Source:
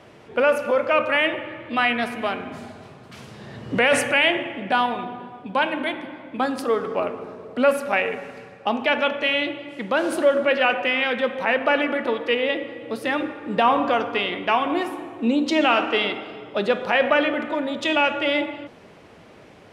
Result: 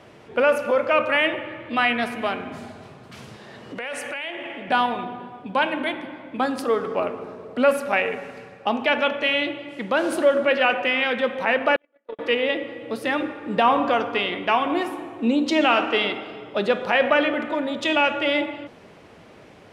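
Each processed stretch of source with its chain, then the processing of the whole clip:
0:03.36–0:04.68: downward compressor, threshold −27 dBFS + parametric band 97 Hz −13 dB 2.2 octaves
0:11.76–0:12.19: high-pass filter 370 Hz 6 dB per octave + parametric band 490 Hz +8 dB 0.82 octaves + noise gate −15 dBFS, range −49 dB
whole clip: no processing

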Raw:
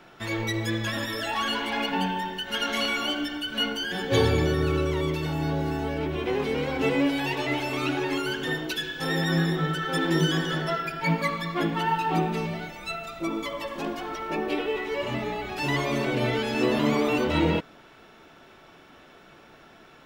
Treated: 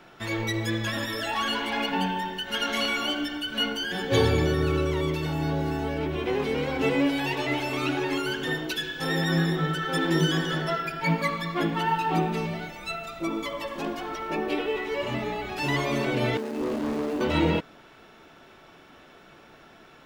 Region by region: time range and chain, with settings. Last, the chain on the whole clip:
0:16.37–0:17.21: running median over 41 samples + high-pass filter 210 Hz 24 dB per octave + hard clipping −24.5 dBFS
whole clip: no processing

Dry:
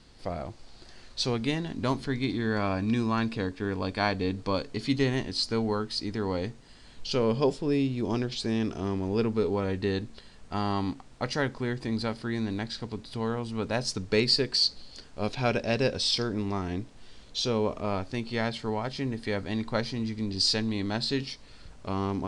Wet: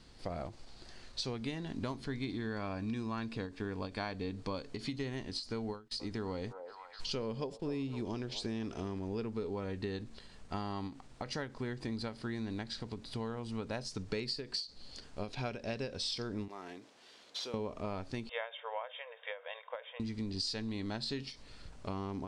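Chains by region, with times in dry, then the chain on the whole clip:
0:05.74–0:08.99: noise gate −40 dBFS, range −25 dB + echo through a band-pass that steps 254 ms, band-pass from 640 Hz, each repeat 0.7 octaves, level −11.5 dB + one half of a high-frequency compander encoder only
0:16.48–0:17.54: variable-slope delta modulation 64 kbit/s + downward compressor 5 to 1, threshold −33 dBFS + band-pass filter 400–6,800 Hz
0:18.29–0:20.00: linear-phase brick-wall band-pass 460–3,700 Hz + comb filter 1.9 ms, depth 31%
whole clip: downward compressor, threshold −32 dBFS; every ending faded ahead of time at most 180 dB per second; level −2.5 dB

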